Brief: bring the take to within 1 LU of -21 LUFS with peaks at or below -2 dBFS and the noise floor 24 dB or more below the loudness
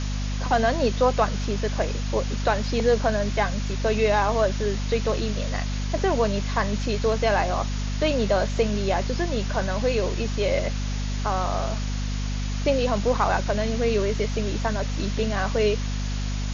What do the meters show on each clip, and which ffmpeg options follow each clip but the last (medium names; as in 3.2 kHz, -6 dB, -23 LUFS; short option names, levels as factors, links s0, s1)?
hum 50 Hz; highest harmonic 250 Hz; hum level -25 dBFS; noise floor -27 dBFS; noise floor target -49 dBFS; loudness -25.0 LUFS; peak level -7.5 dBFS; loudness target -21.0 LUFS
-> -af "bandreject=f=50:t=h:w=6,bandreject=f=100:t=h:w=6,bandreject=f=150:t=h:w=6,bandreject=f=200:t=h:w=6,bandreject=f=250:t=h:w=6"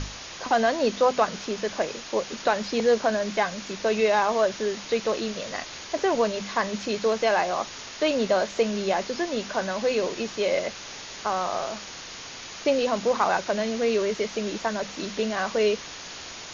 hum not found; noise floor -40 dBFS; noise floor target -50 dBFS
-> -af "afftdn=nr=10:nf=-40"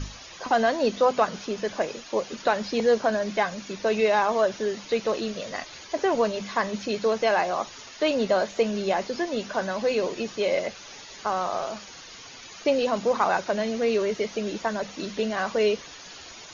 noise floor -44 dBFS; noise floor target -50 dBFS
-> -af "afftdn=nr=6:nf=-44"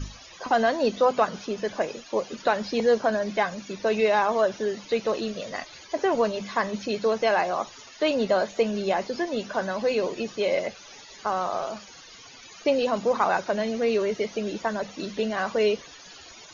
noise floor -47 dBFS; noise floor target -50 dBFS
-> -af "afftdn=nr=6:nf=-47"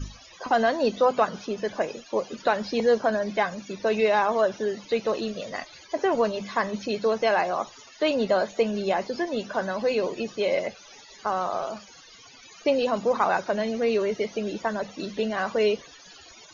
noise floor -50 dBFS; loudness -26.0 LUFS; peak level -9.0 dBFS; loudness target -21.0 LUFS
-> -af "volume=1.78"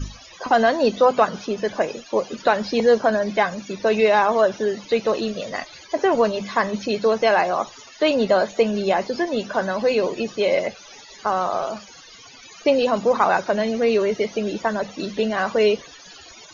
loudness -21.0 LUFS; peak level -4.0 dBFS; noise floor -45 dBFS